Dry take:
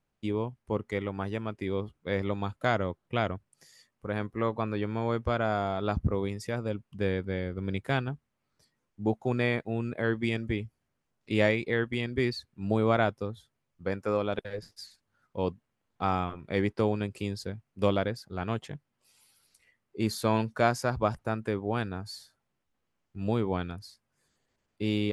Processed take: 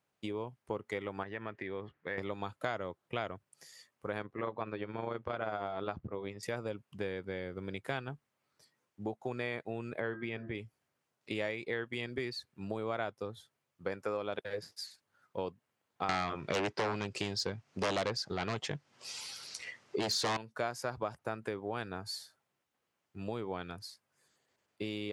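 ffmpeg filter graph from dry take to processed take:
-filter_complex "[0:a]asettb=1/sr,asplit=3[s0][s1][s2];[s0]atrim=end=1.234[s3];[s1]atrim=start=1.23:end=2.18,asetpts=PTS-STARTPTS,afade=t=in:d=0.004:c=qsin,afade=t=out:st=0.946:d=0.004:c=qsin,lowpass=3200,equalizer=f=1800:w=3.8:g=12,acompressor=threshold=0.0158:ratio=3:attack=3.2:release=140:knee=1:detection=peak[s4];[s2]atrim=start=2.176[s5];[s3][s4]acrossfade=d=0.004:c1=hsin:c2=qsin[s6];[s6][s5]acrossfade=d=0.004:c1=qsin:c2=hsin,asettb=1/sr,asplit=3[s7][s8][s9];[s7]atrim=end=4.224[s10];[s8]atrim=start=4.22:end=6.43,asetpts=PTS-STARTPTS,afade=t=in:d=0.004:c=qsin,afade=t=out:st=2.206:d=0.004:c=qsin,tremolo=f=91:d=0.621,lowpass=3900[s11];[s9]atrim=start=6.426[s12];[s10][s11]acrossfade=d=0.004:c1=hsin:c2=qsin[s13];[s13][s12]acrossfade=d=0.004:c1=qsin:c2=hsin,asettb=1/sr,asplit=3[s14][s15][s16];[s14]atrim=end=10.004[s17];[s15]atrim=start=10:end=10.55,asetpts=PTS-STARTPTS,afade=t=in:d=0.004:c=qsin,afade=t=out:st=0.546:d=0.004:c=qsin,lowpass=2600,bandreject=f=84.23:t=h:w=4,bandreject=f=168.46:t=h:w=4,bandreject=f=252.69:t=h:w=4,bandreject=f=336.92:t=h:w=4,bandreject=f=421.15:t=h:w=4,bandreject=f=505.38:t=h:w=4,bandreject=f=589.61:t=h:w=4,bandreject=f=673.84:t=h:w=4,bandreject=f=758.07:t=h:w=4,bandreject=f=842.3:t=h:w=4,bandreject=f=926.53:t=h:w=4,bandreject=f=1010.76:t=h:w=4,bandreject=f=1094.99:t=h:w=4,bandreject=f=1179.22:t=h:w=4,bandreject=f=1263.45:t=h:w=4,bandreject=f=1347.68:t=h:w=4,bandreject=f=1431.91:t=h:w=4,bandreject=f=1516.14:t=h:w=4,bandreject=f=1600.37:t=h:w=4,bandreject=f=1684.6:t=h:w=4,bandreject=f=1768.83:t=h:w=4,bandreject=f=1853.06:t=h:w=4,bandreject=f=1937.29:t=h:w=4[s18];[s16]atrim=start=10.546[s19];[s17][s18]acrossfade=d=0.004:c1=hsin:c2=qsin[s20];[s20][s19]acrossfade=d=0.004:c1=qsin:c2=hsin,asettb=1/sr,asplit=3[s21][s22][s23];[s21]atrim=end=16.094[s24];[s22]atrim=start=16.09:end=20.37,asetpts=PTS-STARTPTS,afade=t=in:d=0.004:c=qsin,afade=t=out:st=4.276:d=0.004:c=qsin,lowpass=f=5900:t=q:w=1.7,aeval=exprs='0.299*sin(PI/2*5.01*val(0)/0.299)':c=same[s25];[s23]atrim=start=20.366[s26];[s24][s25]acrossfade=d=0.004:c1=hsin:c2=qsin[s27];[s27][s26]acrossfade=d=0.004:c1=qsin:c2=hsin,acompressor=threshold=0.0224:ratio=6,highpass=150,equalizer=f=220:t=o:w=1.1:g=-6.5,volume=1.26"

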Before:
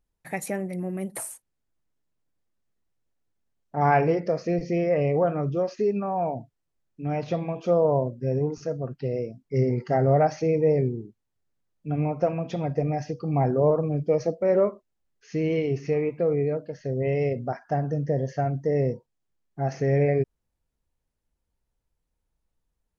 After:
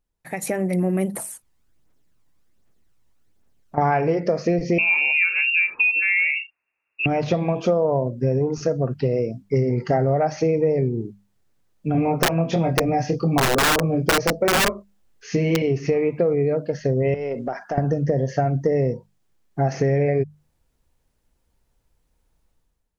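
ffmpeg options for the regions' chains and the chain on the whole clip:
-filter_complex "[0:a]asettb=1/sr,asplit=3[s0][s1][s2];[s0]atrim=end=1.144[s3];[s1]atrim=start=1.14:end=3.78,asetpts=PTS-STARTPTS,afade=t=in:d=0.004:c=qsin,afade=t=out:st=2.636:d=0.004:c=qsin,acompressor=threshold=0.00316:ratio=2:attack=3.2:release=140:knee=1:detection=peak,aphaser=in_gain=1:out_gain=1:delay=1.1:decay=0.41:speed=1.3:type=triangular[s4];[s2]atrim=start=3.776[s5];[s3][s4]acrossfade=d=0.004:c1=hsin:c2=qsin[s6];[s6][s5]acrossfade=d=0.004:c1=qsin:c2=hsin,asettb=1/sr,asplit=3[s7][s8][s9];[s7]atrim=end=4.784[s10];[s8]atrim=start=4.78:end=7.06,asetpts=PTS-STARTPTS,afade=t=in:d=0.004:c=qsin,afade=t=out:st=2.276:d=0.004:c=qsin,highpass=f=130:w=0.5412,highpass=f=130:w=1.3066,lowpass=f=2500:t=q:w=0.5098,lowpass=f=2500:t=q:w=0.6013,lowpass=f=2500:t=q:w=0.9,lowpass=f=2500:t=q:w=2.563,afreqshift=-2900[s11];[s9]atrim=start=7.056[s12];[s10][s11]acrossfade=d=0.004:c1=hsin:c2=qsin[s13];[s13][s12]acrossfade=d=0.004:c1=qsin:c2=hsin,asettb=1/sr,asplit=3[s14][s15][s16];[s14]atrim=end=11.924[s17];[s15]atrim=start=11.92:end=15.62,asetpts=PTS-STARTPTS,afade=t=in:d=0.004:c=qsin,afade=t=out:st=3.696:d=0.004:c=qsin,asplit=2[s18][s19];[s19]adelay=24,volume=0.708[s20];[s18][s20]amix=inputs=2:normalize=0,atrim=end_sample=163170,aeval=exprs='(mod(5.96*val(0)+1,2)-1)/5.96':c=same[s21];[s16]atrim=start=15.616[s22];[s17][s21]acrossfade=d=0.004:c1=hsin:c2=qsin[s23];[s23][s22]acrossfade=d=0.004:c1=qsin:c2=hsin,asettb=1/sr,asplit=3[s24][s25][s26];[s24]atrim=end=17.144[s27];[s25]atrim=start=17.14:end=17.78,asetpts=PTS-STARTPTS,afade=t=in:d=0.004:c=qsin,afade=t=out:st=0.636:d=0.004:c=qsin,highpass=270,acompressor=threshold=0.0224:ratio=8:attack=3.2:release=140:knee=1:detection=peak,aeval=exprs='(tanh(15.8*val(0)+0.2)-tanh(0.2))/15.8':c=same[s28];[s26]atrim=start=17.776[s29];[s27][s28]acrossfade=d=0.004:c1=hsin:c2=qsin[s30];[s30][s29]acrossfade=d=0.004:c1=qsin:c2=hsin,acompressor=threshold=0.0355:ratio=6,bandreject=f=50:t=h:w=6,bandreject=f=100:t=h:w=6,bandreject=f=150:t=h:w=6,bandreject=f=200:t=h:w=6,dynaudnorm=f=130:g=7:m=3.98"

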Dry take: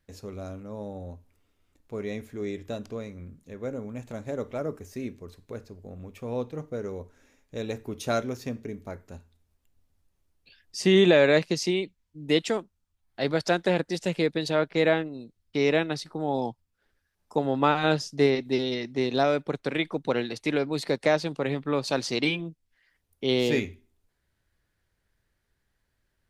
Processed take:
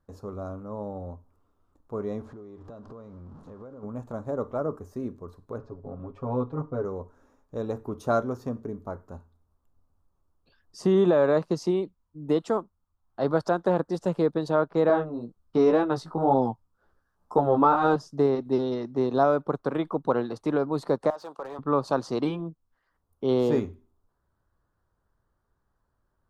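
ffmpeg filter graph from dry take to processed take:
-filter_complex "[0:a]asettb=1/sr,asplit=3[s0][s1][s2];[s0]atrim=end=2.214[s3];[s1]atrim=start=2.21:end=3.83,asetpts=PTS-STARTPTS,afade=t=in:d=0.004:c=qsin,afade=t=out:st=1.616:d=0.004:c=qsin,aeval=exprs='val(0)+0.5*0.00473*sgn(val(0))':c=same,lowpass=5500,acompressor=threshold=0.00794:ratio=16:attack=3.2:release=140:knee=1:detection=peak[s4];[s2]atrim=start=3.826[s5];[s3][s4]acrossfade=d=0.004:c1=hsin:c2=qsin[s6];[s6][s5]acrossfade=d=0.004:c1=qsin:c2=hsin,asettb=1/sr,asplit=3[s7][s8][s9];[s7]atrim=end=5.584[s10];[s8]atrim=start=5.58:end=6.85,asetpts=PTS-STARTPTS,afade=t=in:d=0.004:c=qsin,afade=t=out:st=1.266:d=0.004:c=qsin,lowpass=3900,aecho=1:1:7.3:0.91,atrim=end_sample=56007[s11];[s9]atrim=start=6.846[s12];[s10][s11]acrossfade=d=0.004:c1=hsin:c2=qsin[s13];[s13][s12]acrossfade=d=0.004:c1=qsin:c2=hsin,asettb=1/sr,asplit=3[s14][s15][s16];[s14]atrim=end=14.884[s17];[s15]atrim=start=14.88:end=17.96,asetpts=PTS-STARTPTS,afade=t=in:d=0.004:c=qsin,afade=t=out:st=3.076:d=0.004:c=qsin,acontrast=85,flanger=delay=15:depth=3.5:speed=2[s18];[s16]atrim=start=17.956[s19];[s17][s18]acrossfade=d=0.004:c1=hsin:c2=qsin[s20];[s20][s19]acrossfade=d=0.004:c1=qsin:c2=hsin,asettb=1/sr,asplit=3[s21][s22][s23];[s21]atrim=end=21.104[s24];[s22]atrim=start=21.1:end=21.59,asetpts=PTS-STARTPTS,afade=t=in:d=0.004:c=qsin,afade=t=out:st=0.486:d=0.004:c=qsin,highpass=630,acompressor=threshold=0.0282:ratio=2.5:attack=3.2:release=140:knee=1:detection=peak,asoftclip=type=hard:threshold=0.0224[s25];[s23]atrim=start=21.586[s26];[s24][s25]acrossfade=d=0.004:c1=hsin:c2=qsin[s27];[s27][s26]acrossfade=d=0.004:c1=qsin:c2=hsin,alimiter=limit=0.224:level=0:latency=1:release=221,highshelf=f=1600:t=q:w=3:g=-11,volume=1.12"

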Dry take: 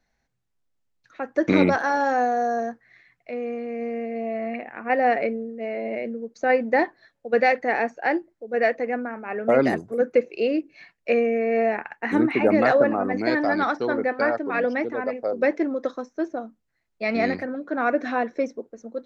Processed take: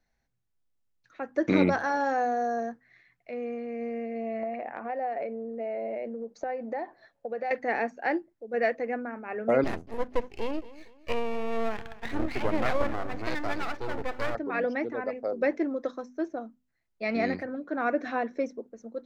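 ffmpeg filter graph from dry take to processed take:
-filter_complex "[0:a]asettb=1/sr,asplit=3[s0][s1][s2];[s0]atrim=end=4.434[s3];[s1]atrim=start=4.43:end=7.51,asetpts=PTS-STARTPTS,afade=t=in:d=0.004:c=qsin,afade=t=out:st=3.076:d=0.004:c=qsin,acompressor=threshold=0.0251:ratio=8:attack=3.2:release=140:knee=1:detection=peak,equalizer=f=700:w=0.98:g=11[s4];[s2]atrim=start=7.506[s5];[s3][s4]acrossfade=d=0.004:c1=hsin:c2=qsin[s6];[s6][s5]acrossfade=d=0.004:c1=qsin:c2=hsin,asettb=1/sr,asplit=3[s7][s8][s9];[s7]atrim=end=9.644[s10];[s8]atrim=start=9.64:end=14.35,asetpts=PTS-STARTPTS,afade=t=in:d=0.004:c=qsin,afade=t=out:st=4.706:d=0.004:c=qsin,lowshelf=f=140:g=-8.5,aeval=exprs='max(val(0),0)':c=same,aecho=1:1:231|462|693:0.133|0.048|0.0173,atrim=end_sample=207711[s11];[s9]atrim=start=14.346[s12];[s10][s11]acrossfade=d=0.004:c1=hsin:c2=qsin[s13];[s13][s12]acrossfade=d=0.004:c1=qsin:c2=hsin,lowshelf=f=190:g=4.5,bandreject=f=50:t=h:w=6,bandreject=f=100:t=h:w=6,bandreject=f=150:t=h:w=6,bandreject=f=200:t=h:w=6,bandreject=f=250:t=h:w=6,volume=0.531"

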